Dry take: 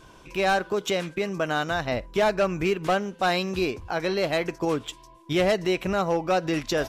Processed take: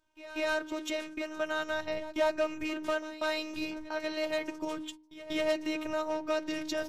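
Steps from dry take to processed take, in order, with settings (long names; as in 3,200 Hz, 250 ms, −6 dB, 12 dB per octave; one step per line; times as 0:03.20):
phases set to zero 310 Hz
noise gate −40 dBFS, range −20 dB
hum removal 77.27 Hz, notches 5
backwards echo 190 ms −15.5 dB
level −5.5 dB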